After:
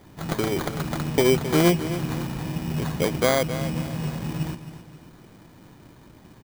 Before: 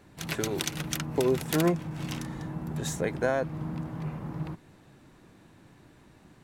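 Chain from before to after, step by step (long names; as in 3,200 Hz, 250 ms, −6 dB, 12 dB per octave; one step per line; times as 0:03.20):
high-frequency loss of the air 160 metres
sample-rate reduction 2,700 Hz, jitter 0%
on a send: repeating echo 266 ms, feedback 38%, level −12 dB
on the sum: level +6.5 dB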